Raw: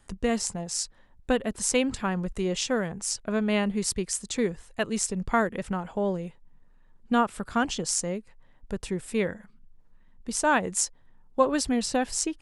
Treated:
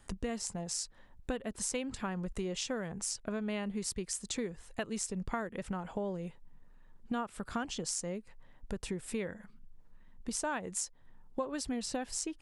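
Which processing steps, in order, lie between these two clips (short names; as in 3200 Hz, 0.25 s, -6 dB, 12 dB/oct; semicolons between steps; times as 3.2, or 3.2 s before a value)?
compressor 4:1, threshold -35 dBFS, peak gain reduction 16.5 dB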